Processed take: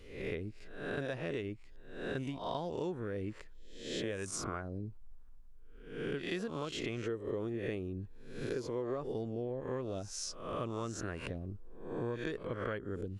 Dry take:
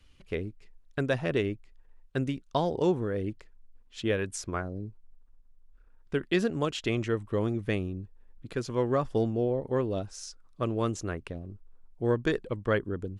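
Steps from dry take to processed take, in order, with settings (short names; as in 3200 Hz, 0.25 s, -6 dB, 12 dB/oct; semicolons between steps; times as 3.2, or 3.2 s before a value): spectral swells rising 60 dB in 0.57 s; 7.06–9.12 dynamic EQ 390 Hz, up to +7 dB, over -41 dBFS, Q 1.5; compressor 6:1, threshold -37 dBFS, peak gain reduction 18.5 dB; gain +1.5 dB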